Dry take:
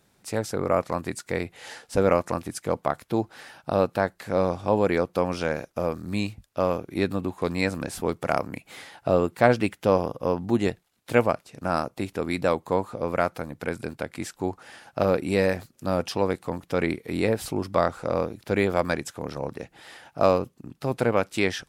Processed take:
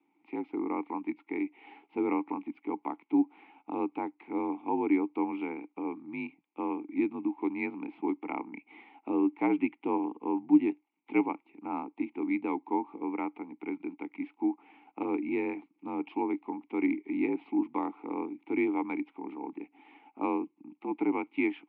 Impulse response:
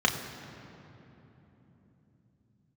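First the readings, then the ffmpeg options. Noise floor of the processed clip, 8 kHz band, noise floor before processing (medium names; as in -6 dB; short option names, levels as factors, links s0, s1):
-75 dBFS, under -40 dB, -65 dBFS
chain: -filter_complex "[0:a]highpass=f=280:t=q:w=0.5412,highpass=f=280:t=q:w=1.307,lowpass=f=3100:t=q:w=0.5176,lowpass=f=3100:t=q:w=0.7071,lowpass=f=3100:t=q:w=1.932,afreqshift=-53,asplit=3[s0][s1][s2];[s0]bandpass=f=300:t=q:w=8,volume=1[s3];[s1]bandpass=f=870:t=q:w=8,volume=0.501[s4];[s2]bandpass=f=2240:t=q:w=8,volume=0.355[s5];[s3][s4][s5]amix=inputs=3:normalize=0,volume=2"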